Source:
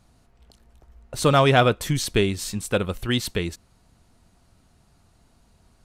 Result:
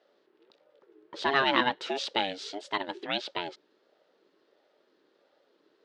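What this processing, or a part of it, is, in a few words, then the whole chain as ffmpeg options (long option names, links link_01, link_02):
voice changer toy: -filter_complex "[0:a]asettb=1/sr,asplit=3[link_01][link_02][link_03];[link_01]atrim=end=1.714[link_04];[link_02]atrim=start=1.71:end=2.99,asetpts=PTS-STARTPTS,afade=type=in:duration=0.004:curve=qsin,afade=type=out:start_time=1.276:duration=0.004:curve=qsin,highshelf=frequency=4900:gain=6.5[link_05];[link_03]atrim=start=2.986[link_06];[link_04][link_05]acrossfade=duration=0.004:curve1=hsin:curve2=qsin[link_07];[link_07][link_06]acrossfade=duration=0.004:curve1=qsin:curve2=hsin,aeval=exprs='val(0)*sin(2*PI*460*n/s+460*0.2/1.5*sin(2*PI*1.5*n/s))':channel_layout=same,highpass=410,equalizer=frequency=490:width_type=q:width=4:gain=-7,equalizer=frequency=710:width_type=q:width=4:gain=-7,equalizer=frequency=1100:width_type=q:width=4:gain=-6,equalizer=frequency=2300:width_type=q:width=4:gain=-5,lowpass=frequency=4200:width=0.5412,lowpass=frequency=4200:width=1.3066"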